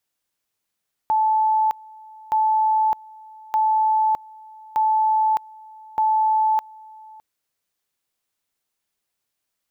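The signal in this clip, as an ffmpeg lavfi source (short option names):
-f lavfi -i "aevalsrc='pow(10,(-15.5-24.5*gte(mod(t,1.22),0.61))/20)*sin(2*PI*871*t)':d=6.1:s=44100"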